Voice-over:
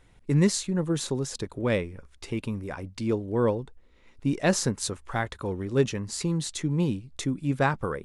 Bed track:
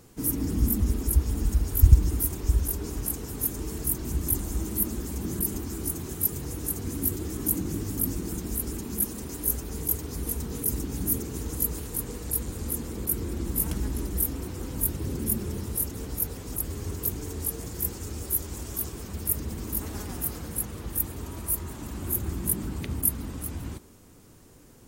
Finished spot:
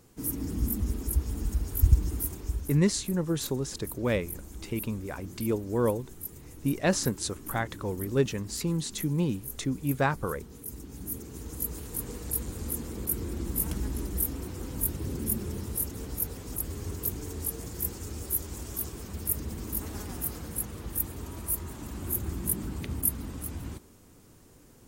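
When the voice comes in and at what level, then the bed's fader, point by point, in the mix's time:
2.40 s, -2.0 dB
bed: 2.28 s -5 dB
2.84 s -13.5 dB
10.59 s -13.5 dB
12.08 s -2.5 dB

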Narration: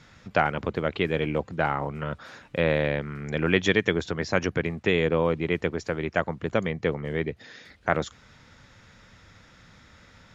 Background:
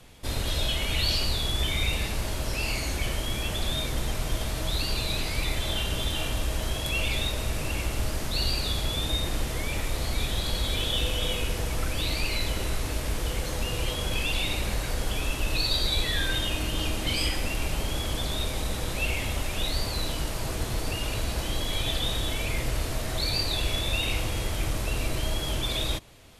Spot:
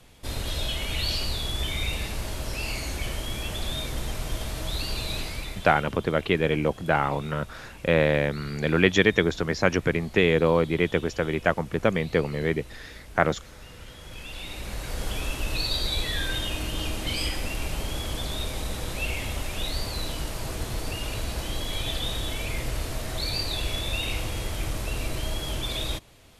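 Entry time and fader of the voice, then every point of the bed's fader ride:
5.30 s, +2.5 dB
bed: 5.2 s -2 dB
5.99 s -17 dB
13.88 s -17 dB
15.05 s -1.5 dB

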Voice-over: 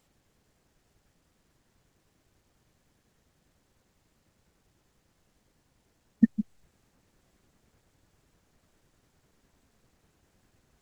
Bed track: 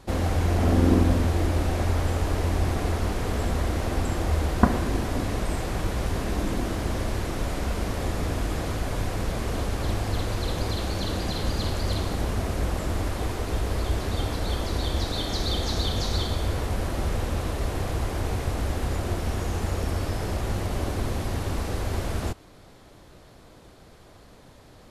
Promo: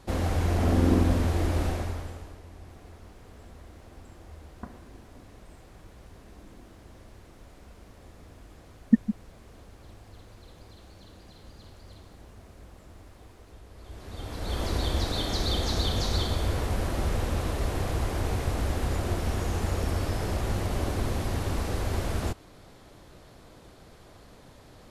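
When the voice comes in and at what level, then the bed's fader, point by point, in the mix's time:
2.70 s, +1.5 dB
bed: 1.67 s -2.5 dB
2.42 s -22.5 dB
13.73 s -22.5 dB
14.64 s -1 dB

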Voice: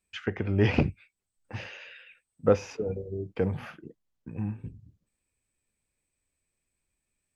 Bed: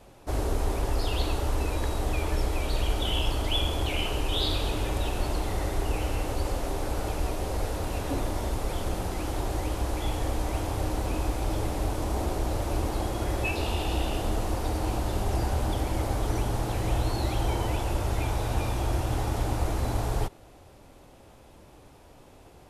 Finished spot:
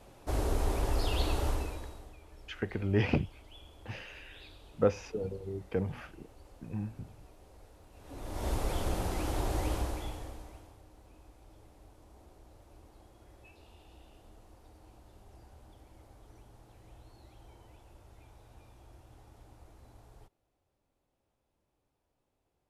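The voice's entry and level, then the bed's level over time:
2.35 s, -4.5 dB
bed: 1.49 s -3 dB
2.18 s -26.5 dB
7.92 s -26.5 dB
8.49 s -2.5 dB
9.75 s -2.5 dB
10.83 s -28.5 dB

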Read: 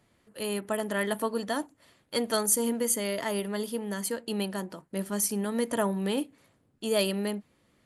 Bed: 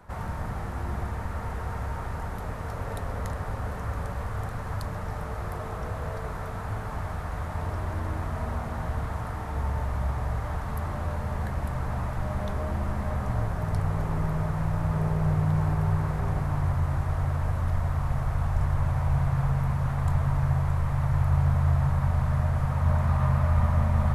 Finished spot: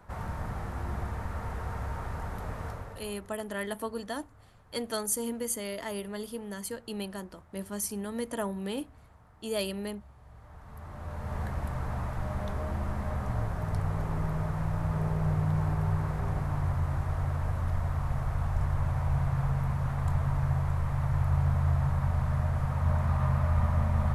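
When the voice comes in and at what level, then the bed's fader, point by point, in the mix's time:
2.60 s, -5.5 dB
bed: 2.67 s -3 dB
3.36 s -25.5 dB
10.18 s -25.5 dB
11.37 s -3.5 dB

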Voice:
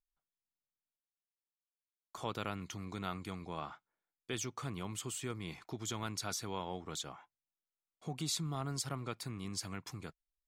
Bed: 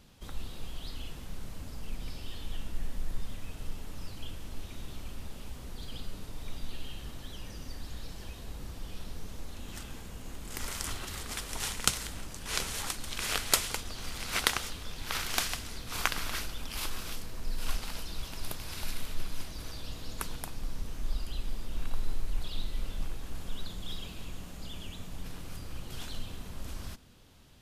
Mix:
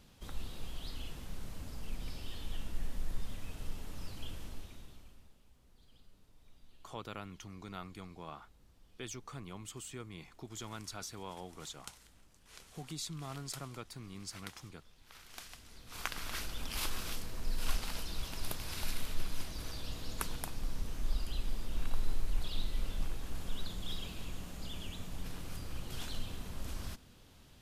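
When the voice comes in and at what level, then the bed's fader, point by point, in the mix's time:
4.70 s, -5.0 dB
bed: 4.44 s -2.5 dB
5.42 s -22.5 dB
15.15 s -22.5 dB
16.61 s -1 dB

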